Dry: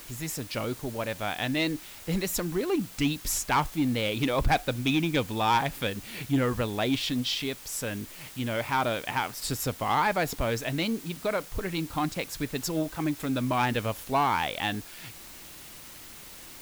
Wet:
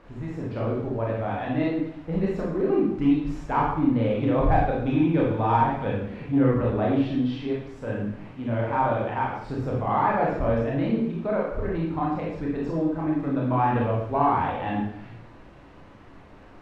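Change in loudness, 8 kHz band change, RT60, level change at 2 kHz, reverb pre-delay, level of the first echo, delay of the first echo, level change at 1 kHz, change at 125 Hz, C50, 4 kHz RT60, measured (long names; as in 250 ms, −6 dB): +3.5 dB, below −25 dB, 0.75 s, −4.0 dB, 25 ms, no echo audible, no echo audible, +3.5 dB, +5.5 dB, 1.0 dB, 0.70 s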